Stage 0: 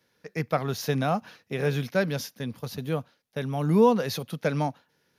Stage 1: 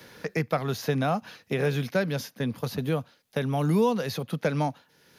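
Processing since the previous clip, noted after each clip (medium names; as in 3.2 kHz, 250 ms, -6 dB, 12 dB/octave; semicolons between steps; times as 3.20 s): band-stop 5.6 kHz, Q 27; three bands compressed up and down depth 70%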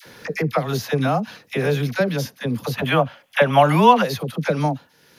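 time-frequency box 2.76–4.01 s, 520–3500 Hz +12 dB; phase dispersion lows, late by 56 ms, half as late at 770 Hz; trim +5.5 dB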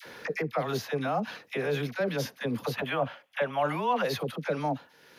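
tone controls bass -9 dB, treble -7 dB; reverse; compression 4:1, threshold -27 dBFS, peak gain reduction 16 dB; reverse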